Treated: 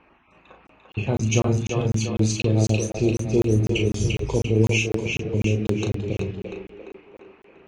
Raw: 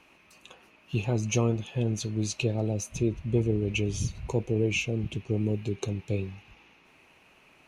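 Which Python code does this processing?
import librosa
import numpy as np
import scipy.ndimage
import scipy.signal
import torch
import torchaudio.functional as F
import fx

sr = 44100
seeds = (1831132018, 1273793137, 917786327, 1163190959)

y = fx.spec_dropout(x, sr, seeds[0], share_pct=21)
y = fx.echo_split(y, sr, split_hz=300.0, low_ms=90, high_ms=345, feedback_pct=52, wet_db=-4)
y = fx.env_lowpass(y, sr, base_hz=1700.0, full_db=-21.0)
y = fx.doubler(y, sr, ms=37.0, db=-5.5)
y = fx.buffer_crackle(y, sr, first_s=0.67, period_s=0.25, block=1024, kind='zero')
y = y * librosa.db_to_amplitude(4.5)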